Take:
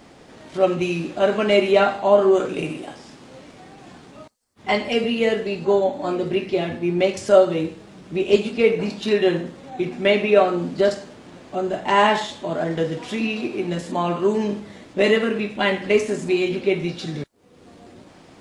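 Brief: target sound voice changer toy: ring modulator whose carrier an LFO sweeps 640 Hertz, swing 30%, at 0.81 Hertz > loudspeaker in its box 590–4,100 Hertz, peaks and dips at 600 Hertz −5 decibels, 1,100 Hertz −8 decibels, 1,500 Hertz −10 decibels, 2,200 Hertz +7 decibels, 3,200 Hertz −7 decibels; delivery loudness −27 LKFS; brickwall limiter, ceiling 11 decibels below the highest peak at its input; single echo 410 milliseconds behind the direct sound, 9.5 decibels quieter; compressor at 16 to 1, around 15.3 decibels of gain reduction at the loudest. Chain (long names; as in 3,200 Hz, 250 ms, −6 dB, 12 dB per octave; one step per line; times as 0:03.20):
downward compressor 16 to 1, threshold −24 dBFS
brickwall limiter −22 dBFS
single-tap delay 410 ms −9.5 dB
ring modulator whose carrier an LFO sweeps 640 Hz, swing 30%, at 0.81 Hz
loudspeaker in its box 590–4,100 Hz, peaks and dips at 600 Hz −5 dB, 1,100 Hz −8 dB, 1,500 Hz −10 dB, 2,200 Hz +7 dB, 3,200 Hz −7 dB
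level +13.5 dB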